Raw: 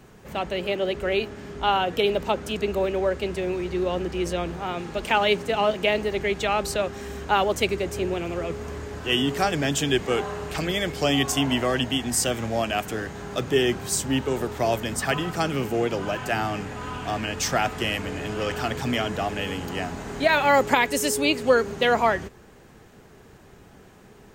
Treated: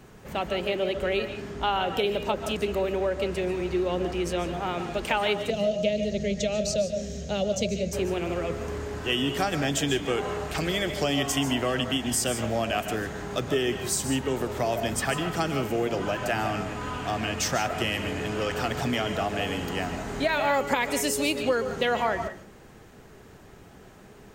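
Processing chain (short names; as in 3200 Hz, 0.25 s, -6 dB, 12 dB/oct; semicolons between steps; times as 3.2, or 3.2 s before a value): 5.5–7.93 EQ curve 110 Hz 0 dB, 210 Hz +7 dB, 310 Hz -12 dB, 610 Hz +5 dB, 900 Hz -23 dB, 6500 Hz +7 dB, 10000 Hz -14 dB; compressor 2.5:1, threshold -24 dBFS, peak gain reduction 8 dB; reverb RT60 0.35 s, pre-delay 0.105 s, DRR 9 dB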